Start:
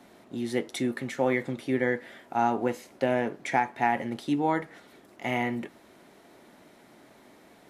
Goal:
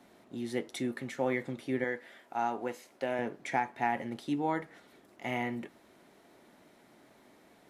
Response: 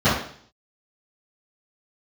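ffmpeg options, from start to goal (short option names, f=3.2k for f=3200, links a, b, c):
-filter_complex "[0:a]asettb=1/sr,asplit=3[a][b][c];[a]atrim=end=1.844[d];[b]atrim=start=1.84:end=3.19,asetpts=PTS-STARTPTS,afade=t=in:d=0.004:c=qsin,afade=t=out:st=1.346:d=0.004:c=qsin,lowshelf=f=260:g=-10.5[e];[c]atrim=start=3.186[f];[d][e]acrossfade=d=0.004:c1=hsin:c2=qsin[g];[g][f]acrossfade=d=0.004:c1=qsin:c2=hsin,volume=-5.5dB"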